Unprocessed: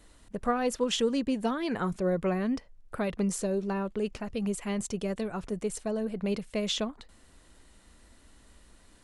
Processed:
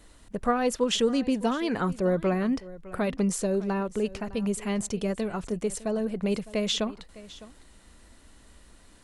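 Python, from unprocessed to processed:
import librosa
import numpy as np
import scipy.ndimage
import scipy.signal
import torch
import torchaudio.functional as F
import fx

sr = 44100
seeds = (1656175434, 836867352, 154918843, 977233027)

y = x + 10.0 ** (-18.5 / 20.0) * np.pad(x, (int(607 * sr / 1000.0), 0))[:len(x)]
y = y * 10.0 ** (3.0 / 20.0)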